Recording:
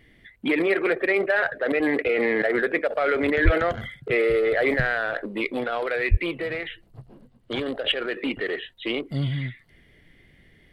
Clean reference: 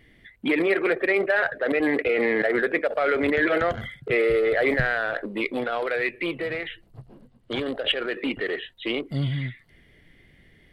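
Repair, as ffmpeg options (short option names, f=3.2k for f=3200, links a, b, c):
-filter_complex "[0:a]asplit=3[a][b][c];[a]afade=t=out:st=3.44:d=0.02[d];[b]highpass=f=140:w=0.5412,highpass=f=140:w=1.3066,afade=t=in:st=3.44:d=0.02,afade=t=out:st=3.56:d=0.02[e];[c]afade=t=in:st=3.56:d=0.02[f];[d][e][f]amix=inputs=3:normalize=0,asplit=3[g][h][i];[g]afade=t=out:st=6.1:d=0.02[j];[h]highpass=f=140:w=0.5412,highpass=f=140:w=1.3066,afade=t=in:st=6.1:d=0.02,afade=t=out:st=6.22:d=0.02[k];[i]afade=t=in:st=6.22:d=0.02[l];[j][k][l]amix=inputs=3:normalize=0"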